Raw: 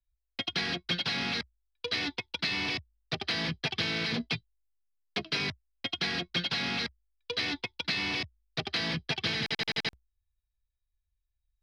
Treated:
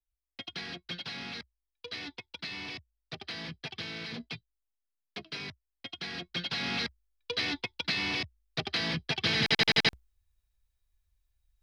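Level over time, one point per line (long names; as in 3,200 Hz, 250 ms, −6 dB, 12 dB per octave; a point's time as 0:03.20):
0:05.98 −8.5 dB
0:06.78 0 dB
0:09.13 0 dB
0:09.56 +7 dB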